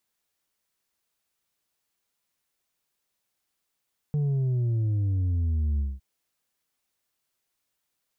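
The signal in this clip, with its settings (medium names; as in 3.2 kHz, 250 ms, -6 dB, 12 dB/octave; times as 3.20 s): sub drop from 150 Hz, over 1.86 s, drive 4 dB, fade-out 0.21 s, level -23 dB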